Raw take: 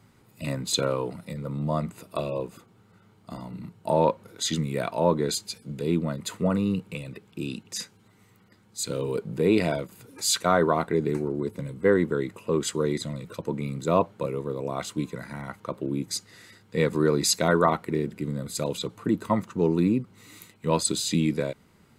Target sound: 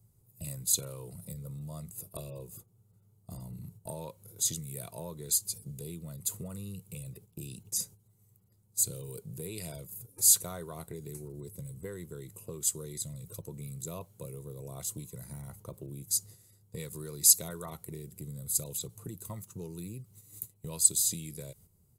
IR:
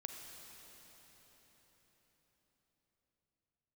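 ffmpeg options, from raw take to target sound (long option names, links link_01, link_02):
-filter_complex "[0:a]agate=range=-10dB:threshold=-47dB:ratio=16:detection=peak,firequalizer=gain_entry='entry(110,0);entry(260,-20);entry(370,-12);entry(1600,-28);entry(6600,-6);entry(11000,5)':delay=0.05:min_phase=1,acrossover=split=1500[link_01][link_02];[link_01]acompressor=threshold=-48dB:ratio=6[link_03];[link_03][link_02]amix=inputs=2:normalize=0,volume=7.5dB"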